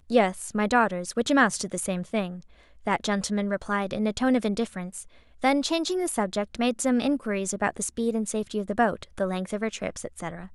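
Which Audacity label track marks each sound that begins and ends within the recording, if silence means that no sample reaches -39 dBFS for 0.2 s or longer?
2.870000	5.030000	sound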